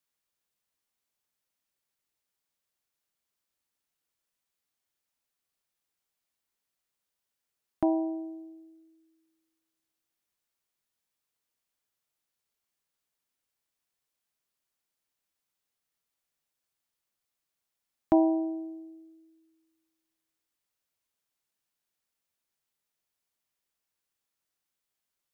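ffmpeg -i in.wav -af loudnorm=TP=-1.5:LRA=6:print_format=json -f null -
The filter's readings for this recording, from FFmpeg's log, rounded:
"input_i" : "-28.8",
"input_tp" : "-12.0",
"input_lra" : "4.8",
"input_thresh" : "-41.9",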